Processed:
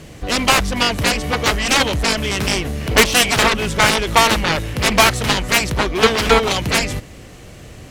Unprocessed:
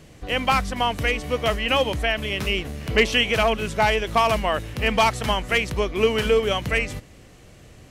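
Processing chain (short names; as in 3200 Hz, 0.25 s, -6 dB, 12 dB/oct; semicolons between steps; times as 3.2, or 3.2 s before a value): bit-crush 12-bit; added harmonics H 7 -8 dB, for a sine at -6.5 dBFS; gain +4.5 dB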